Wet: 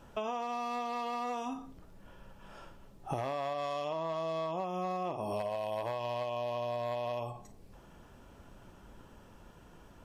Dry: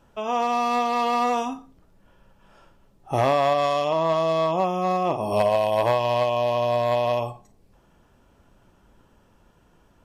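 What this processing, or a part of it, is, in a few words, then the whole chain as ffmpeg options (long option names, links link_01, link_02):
serial compression, peaks first: -af "acompressor=threshold=-31dB:ratio=10,acompressor=threshold=-43dB:ratio=1.5,volume=3dB"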